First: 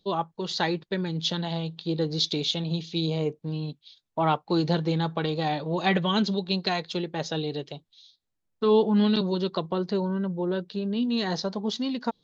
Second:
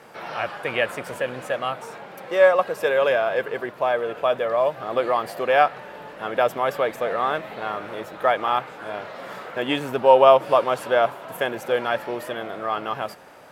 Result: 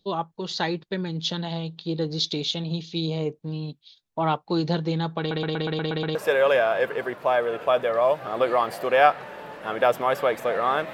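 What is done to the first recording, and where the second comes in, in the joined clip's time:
first
0:05.19: stutter in place 0.12 s, 8 plays
0:06.15: continue with second from 0:02.71

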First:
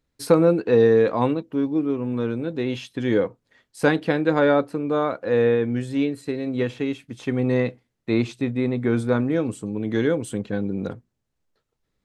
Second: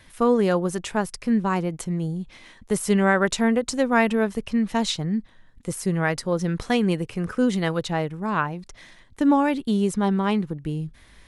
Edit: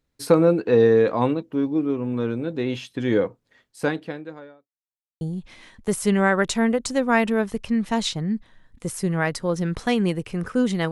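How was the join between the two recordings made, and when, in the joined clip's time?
first
0:03.61–0:04.71: fade out quadratic
0:04.71–0:05.21: silence
0:05.21: continue with second from 0:02.04

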